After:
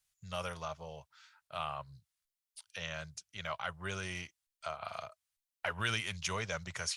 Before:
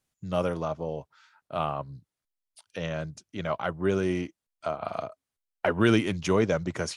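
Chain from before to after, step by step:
guitar amp tone stack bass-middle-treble 10-0-10
in parallel at −1.5 dB: brickwall limiter −30 dBFS, peak gain reduction 11 dB
on the sum: level −2.5 dB

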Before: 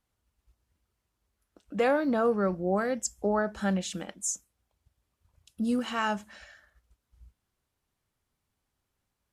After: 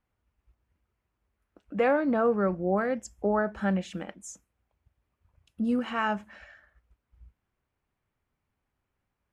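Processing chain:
drawn EQ curve 2,400 Hz 0 dB, 3,800 Hz −10 dB, 8,000 Hz −14 dB
level +1 dB

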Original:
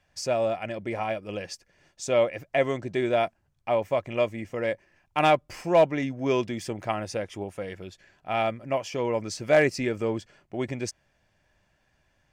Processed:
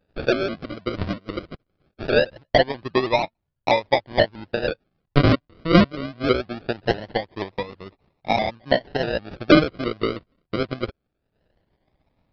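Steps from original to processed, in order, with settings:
transient designer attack +10 dB, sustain −8 dB
sample-and-hold swept by an LFO 40×, swing 60% 0.22 Hz
downsampling to 11,025 Hz
pitch modulation by a square or saw wave saw up 6.2 Hz, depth 100 cents

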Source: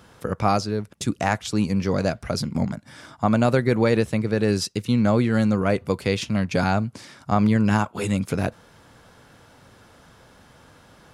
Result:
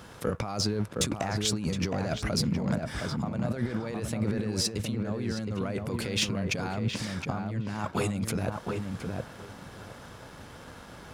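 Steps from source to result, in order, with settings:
compressor whose output falls as the input rises −29 dBFS, ratio −1
feedback echo with a low-pass in the loop 716 ms, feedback 20%, low-pass 1,700 Hz, level −3.5 dB
leveller curve on the samples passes 1
level −6 dB

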